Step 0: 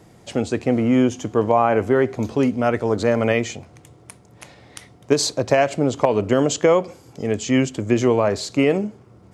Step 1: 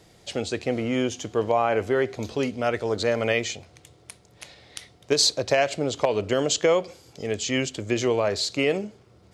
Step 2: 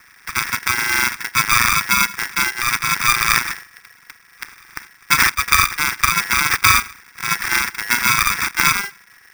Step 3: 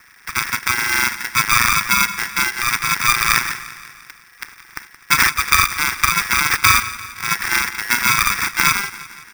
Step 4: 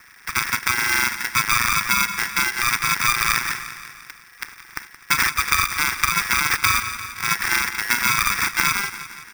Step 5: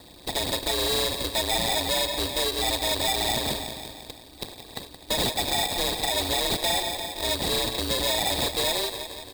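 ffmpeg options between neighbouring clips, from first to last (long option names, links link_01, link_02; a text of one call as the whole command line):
ffmpeg -i in.wav -af "equalizer=frequency=125:width_type=o:width=1:gain=-5,equalizer=frequency=250:width_type=o:width=1:gain=-7,equalizer=frequency=1000:width_type=o:width=1:gain=-5,equalizer=frequency=4000:width_type=o:width=1:gain=7,volume=-2dB" out.wav
ffmpeg -i in.wav -af "acrusher=samples=37:mix=1:aa=0.000001,aeval=exprs='val(0)*sgn(sin(2*PI*1800*n/s))':channel_layout=same,volume=6.5dB" out.wav
ffmpeg -i in.wav -af "aecho=1:1:172|344|516|688|860:0.158|0.0903|0.0515|0.0294|0.0167" out.wav
ffmpeg -i in.wav -af "acompressor=threshold=-16dB:ratio=4" out.wav
ffmpeg -i in.wav -af "afftfilt=real='real(if(between(b,1,1012),(2*floor((b-1)/92)+1)*92-b,b),0)':imag='imag(if(between(b,1,1012),(2*floor((b-1)/92)+1)*92-b,b),0)*if(between(b,1,1012),-1,1)':win_size=2048:overlap=0.75,asoftclip=type=tanh:threshold=-21dB" out.wav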